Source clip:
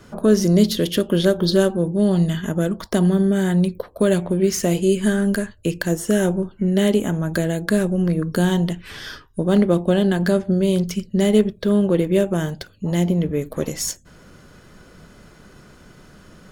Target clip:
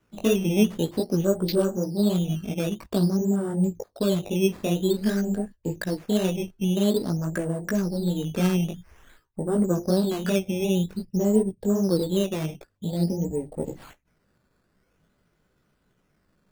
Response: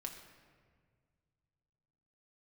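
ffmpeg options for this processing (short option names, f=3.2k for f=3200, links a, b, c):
-af "afwtdn=0.0447,flanger=delay=15.5:depth=4.6:speed=2.7,acrusher=samples=10:mix=1:aa=0.000001:lfo=1:lforange=10:lforate=0.5,volume=-3dB"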